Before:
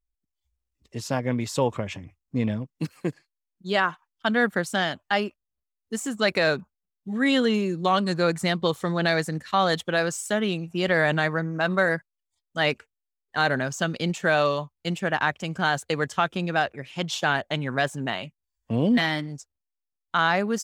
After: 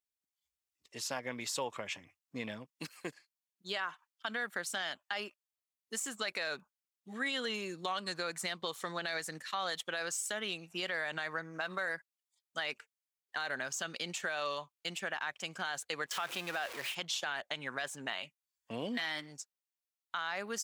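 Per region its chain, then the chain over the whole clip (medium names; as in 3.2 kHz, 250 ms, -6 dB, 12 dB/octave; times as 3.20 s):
16.06–16.95 s: jump at every zero crossing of -29.5 dBFS + tone controls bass -4 dB, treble -4 dB + gate with hold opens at -29 dBFS, closes at -32 dBFS
whole clip: high-pass 1.5 kHz 6 dB/octave; peak limiter -20.5 dBFS; compression 2:1, threshold -36 dBFS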